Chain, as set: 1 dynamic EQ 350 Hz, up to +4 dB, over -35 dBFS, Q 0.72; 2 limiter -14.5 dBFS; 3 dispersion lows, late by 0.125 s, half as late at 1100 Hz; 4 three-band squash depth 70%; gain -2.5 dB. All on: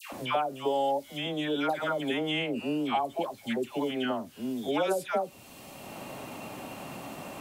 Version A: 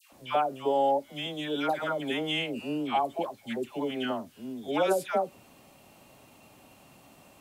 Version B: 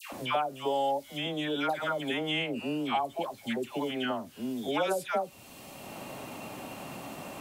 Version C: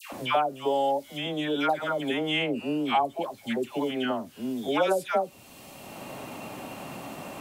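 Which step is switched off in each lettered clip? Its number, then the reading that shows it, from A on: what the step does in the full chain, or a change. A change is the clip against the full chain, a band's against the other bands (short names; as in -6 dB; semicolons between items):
4, crest factor change +1.5 dB; 1, 250 Hz band -2.0 dB; 2, momentary loudness spread change +1 LU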